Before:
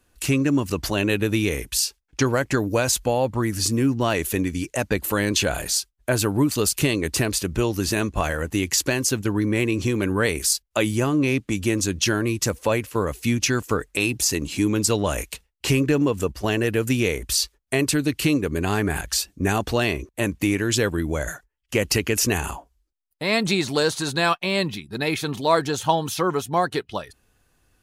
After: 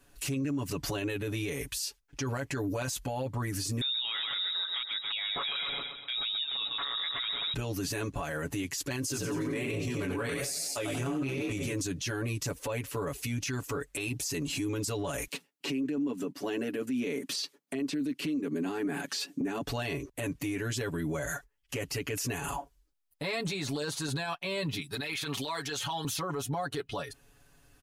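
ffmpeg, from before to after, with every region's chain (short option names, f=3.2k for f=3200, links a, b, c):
-filter_complex "[0:a]asettb=1/sr,asplit=3[a][b][c];[a]atrim=end=3.814[d];[b]atrim=start=3.81:end=7.54,asetpts=PTS-STARTPTS,afade=t=in:d=0.004:c=qsin,afade=t=out:st=3.726:d=0.004:c=qsin,deesser=0.3,aecho=1:1:129|258|387|516|645:0.299|0.143|0.0688|0.033|0.0158,atrim=end_sample=164493,lowpass=f=3.3k:t=q:w=0.5098,lowpass=f=3.3k:t=q:w=0.6013,lowpass=f=3.3k:t=q:w=0.9,lowpass=f=3.3k:t=q:w=2.563,afreqshift=-3900[e];[c]atrim=start=7.536[f];[d][e]acrossfade=d=0.004:c1=hsin:c2=qsin[g];[g][f]acrossfade=d=0.004:c1=qsin:c2=hsin,asettb=1/sr,asplit=3[h][i][j];[h]atrim=end=9.014[k];[i]atrim=start=9.01:end=11.73,asetpts=PTS-STARTPTS,afade=t=in:d=0.004:c=qsin,afade=t=out:st=2.716:d=0.004:c=qsin,asplit=6[l][m][n][o][p][q];[m]adelay=89,afreqshift=50,volume=-6.5dB[r];[n]adelay=178,afreqshift=100,volume=-13.2dB[s];[o]adelay=267,afreqshift=150,volume=-20dB[t];[p]adelay=356,afreqshift=200,volume=-26.7dB[u];[q]adelay=445,afreqshift=250,volume=-33.5dB[v];[l][r][s][t][u][v]amix=inputs=6:normalize=0,atrim=end_sample=119952,flanger=delay=19:depth=5.4:speed=1.2[w];[j]atrim=start=11.726[x];[k][w]acrossfade=d=0.004:c1=hsin:c2=qsin[y];[y][x]acrossfade=d=0.004:c1=qsin:c2=hsin,asettb=1/sr,asplit=3[z][aa][ab];[z]atrim=end=15.274[ac];[aa]atrim=start=15.27:end=19.62,asetpts=PTS-STARTPTS,afade=t=in:d=0.004:c=qsin,afade=t=out:st=4.346:d=0.004:c=qsin,highpass=f=180:w=0.5412,highpass=f=180:w=1.3066,equalizer=f=250:t=o:w=0.97:g=11.5,acrossover=split=5100[ad][ae];[ae]acompressor=threshold=-40dB:ratio=4:attack=1:release=60[af];[ad][af]amix=inputs=2:normalize=0[ag];[ab]atrim=start=19.616[ah];[ac][ag]acrossfade=d=0.004:c1=hsin:c2=qsin[ai];[ai][ah]acrossfade=d=0.004:c1=qsin:c2=hsin,asettb=1/sr,asplit=3[aj][ak][al];[aj]atrim=end=24.814[am];[ak]atrim=start=24.81:end=26.05,asetpts=PTS-STARTPTS,afade=t=in:d=0.004:c=qsin,afade=t=out:st=1.236:d=0.004:c=qsin,tiltshelf=f=1.4k:g=-6.5,acrossover=split=460|3800[an][ao][ap];[an]acompressor=threshold=-37dB:ratio=4[aq];[ao]acompressor=threshold=-22dB:ratio=4[ar];[ap]acompressor=threshold=-39dB:ratio=4[as];[aq][ar][as]amix=inputs=3:normalize=0[at];[al]atrim=start=26.046[au];[am][at]acrossfade=d=0.004:c1=hsin:c2=qsin[av];[av][au]acrossfade=d=0.004:c1=qsin:c2=hsin,acompressor=threshold=-28dB:ratio=6,aecho=1:1:7.1:0.93,alimiter=level_in=1.5dB:limit=-24dB:level=0:latency=1:release=11,volume=-1.5dB"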